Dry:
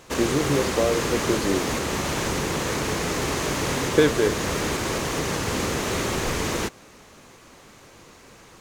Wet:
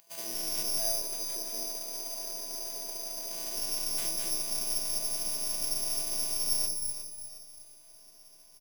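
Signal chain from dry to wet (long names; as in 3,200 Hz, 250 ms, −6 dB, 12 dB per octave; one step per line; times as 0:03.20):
running median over 25 samples
0:00.78–0:03.33: three-way crossover with the lows and the highs turned down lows −13 dB, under 280 Hz, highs −15 dB, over 2,600 Hz
hard clipping −20.5 dBFS, distortion −10 dB
phases set to zero 334 Hz
phaser with its sweep stopped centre 320 Hz, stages 6
three-band delay without the direct sound highs, mids, lows 70/230 ms, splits 170/670 Hz
bad sample-rate conversion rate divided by 8×, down none, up zero stuff
feedback echo at a low word length 360 ms, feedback 35%, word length 8 bits, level −10 dB
level −6 dB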